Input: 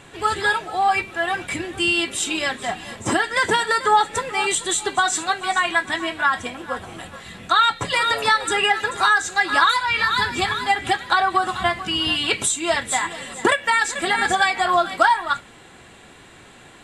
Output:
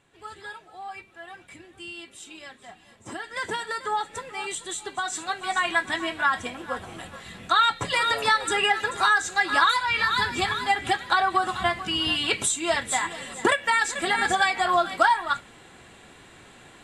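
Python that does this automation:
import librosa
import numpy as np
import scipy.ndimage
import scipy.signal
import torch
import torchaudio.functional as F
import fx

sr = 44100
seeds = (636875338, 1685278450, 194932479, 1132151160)

y = fx.gain(x, sr, db=fx.line((2.98, -19.5), (3.41, -11.0), (4.93, -11.0), (5.7, -3.5)))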